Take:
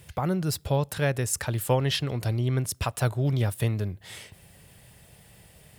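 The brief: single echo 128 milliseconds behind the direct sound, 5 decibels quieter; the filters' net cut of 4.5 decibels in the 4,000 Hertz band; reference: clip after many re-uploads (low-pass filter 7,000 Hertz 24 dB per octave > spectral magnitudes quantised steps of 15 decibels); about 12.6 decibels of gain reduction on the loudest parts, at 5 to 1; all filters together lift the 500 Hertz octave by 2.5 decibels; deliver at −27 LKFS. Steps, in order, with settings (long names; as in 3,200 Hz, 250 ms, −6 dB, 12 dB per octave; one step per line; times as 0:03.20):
parametric band 500 Hz +3 dB
parametric band 4,000 Hz −6 dB
downward compressor 5 to 1, threshold −31 dBFS
low-pass filter 7,000 Hz 24 dB per octave
single-tap delay 128 ms −5 dB
spectral magnitudes quantised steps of 15 dB
level +8 dB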